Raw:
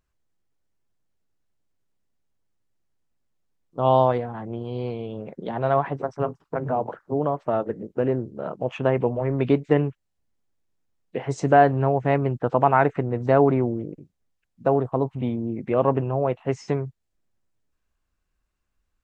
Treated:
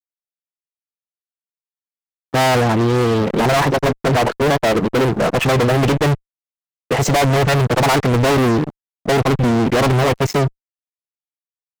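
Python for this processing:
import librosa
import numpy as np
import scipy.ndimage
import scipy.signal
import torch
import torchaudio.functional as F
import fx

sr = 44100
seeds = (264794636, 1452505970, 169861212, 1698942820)

y = fx.stretch_vocoder(x, sr, factor=0.62)
y = fx.fuzz(y, sr, gain_db=38.0, gate_db=-47.0)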